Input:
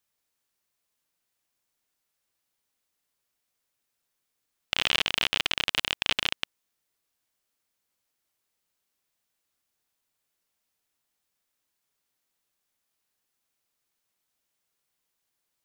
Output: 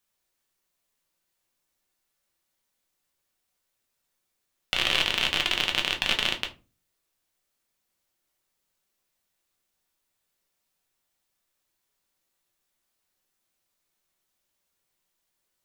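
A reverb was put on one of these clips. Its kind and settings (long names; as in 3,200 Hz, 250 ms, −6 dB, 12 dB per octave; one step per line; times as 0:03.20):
rectangular room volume 120 cubic metres, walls furnished, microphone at 1.1 metres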